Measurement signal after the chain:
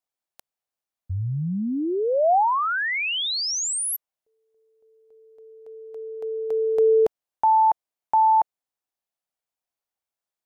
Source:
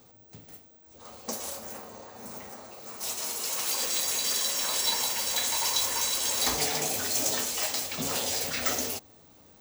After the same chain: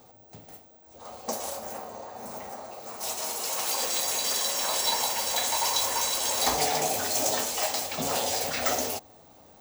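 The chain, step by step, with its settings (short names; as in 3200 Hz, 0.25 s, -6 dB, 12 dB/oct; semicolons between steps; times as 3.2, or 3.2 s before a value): bell 730 Hz +9 dB 1 oct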